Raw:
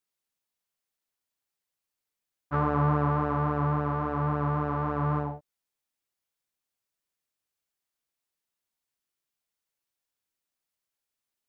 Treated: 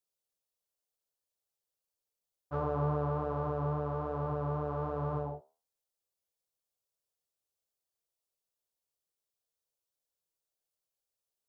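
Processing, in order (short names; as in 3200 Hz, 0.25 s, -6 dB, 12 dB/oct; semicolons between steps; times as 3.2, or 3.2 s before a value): graphic EQ 250/500/1000/2000 Hz -10/+7/-3/-12 dB; in parallel at -2 dB: limiter -27 dBFS, peak gain reduction 10 dB; on the sum: flange 1.2 Hz, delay 8.8 ms, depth 5.9 ms, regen -76%; gain -3 dB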